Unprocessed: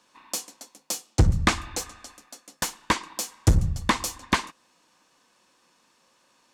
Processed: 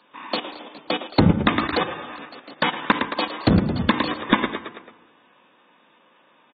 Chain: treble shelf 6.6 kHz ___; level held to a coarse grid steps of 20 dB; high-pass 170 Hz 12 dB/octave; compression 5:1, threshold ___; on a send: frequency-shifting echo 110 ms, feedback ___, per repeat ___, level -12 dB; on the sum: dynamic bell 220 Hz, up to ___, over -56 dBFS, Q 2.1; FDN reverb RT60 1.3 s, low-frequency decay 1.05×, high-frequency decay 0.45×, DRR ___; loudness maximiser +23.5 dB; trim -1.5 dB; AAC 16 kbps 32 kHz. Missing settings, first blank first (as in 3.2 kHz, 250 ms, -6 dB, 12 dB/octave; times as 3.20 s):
-9.5 dB, -35 dBFS, 52%, +40 Hz, +6 dB, 16.5 dB